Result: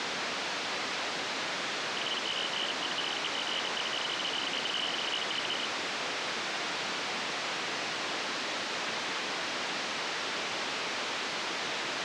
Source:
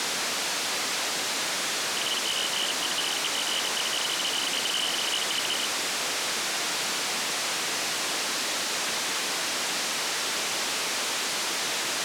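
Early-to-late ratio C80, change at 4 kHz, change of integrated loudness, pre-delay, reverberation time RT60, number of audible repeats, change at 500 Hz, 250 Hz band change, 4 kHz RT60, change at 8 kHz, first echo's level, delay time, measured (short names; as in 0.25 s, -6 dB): none, -6.0 dB, -6.0 dB, none, none, none, -2.5 dB, -2.0 dB, none, -14.0 dB, none, none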